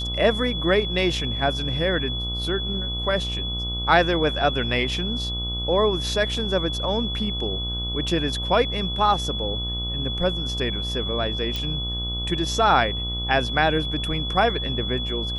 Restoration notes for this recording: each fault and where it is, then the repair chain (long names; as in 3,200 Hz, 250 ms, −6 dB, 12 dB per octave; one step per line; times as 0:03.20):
mains buzz 60 Hz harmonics 23 −30 dBFS
whistle 3,400 Hz −28 dBFS
0:11.56: click −14 dBFS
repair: click removal
hum removal 60 Hz, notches 23
notch filter 3,400 Hz, Q 30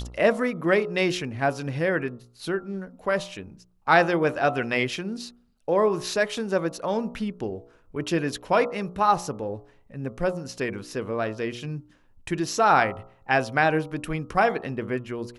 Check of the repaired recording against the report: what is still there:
none of them is left